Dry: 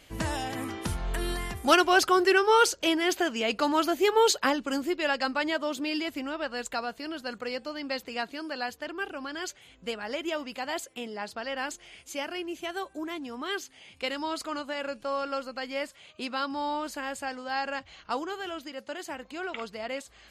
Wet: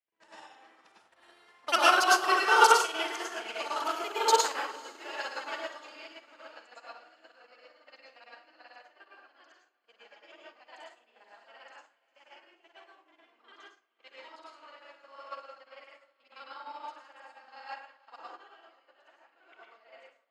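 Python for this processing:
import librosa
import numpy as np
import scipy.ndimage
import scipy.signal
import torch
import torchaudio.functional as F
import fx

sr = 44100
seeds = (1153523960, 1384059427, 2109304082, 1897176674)

p1 = fx.local_reverse(x, sr, ms=40.0)
p2 = fx.env_lowpass(p1, sr, base_hz=2500.0, full_db=-20.0)
p3 = fx.rev_plate(p2, sr, seeds[0], rt60_s=0.77, hf_ratio=0.55, predelay_ms=90, drr_db=-4.5)
p4 = fx.dynamic_eq(p3, sr, hz=1700.0, q=6.4, threshold_db=-40.0, ratio=4.0, max_db=-4)
p5 = 10.0 ** (-16.0 / 20.0) * np.tanh(p4 / 10.0 ** (-16.0 / 20.0))
p6 = p4 + (p5 * librosa.db_to_amplitude(-11.0))
p7 = scipy.signal.sosfilt(scipy.signal.butter(2, 690.0, 'highpass', fs=sr, output='sos'), p6)
p8 = fx.echo_diffused(p7, sr, ms=485, feedback_pct=56, wet_db=-10.5)
y = fx.upward_expand(p8, sr, threshold_db=-41.0, expansion=2.5)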